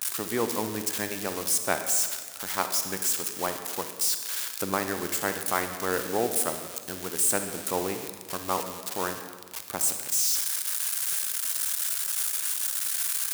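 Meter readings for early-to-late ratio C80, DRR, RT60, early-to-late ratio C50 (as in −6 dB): 9.0 dB, 7.0 dB, 1.5 s, 7.5 dB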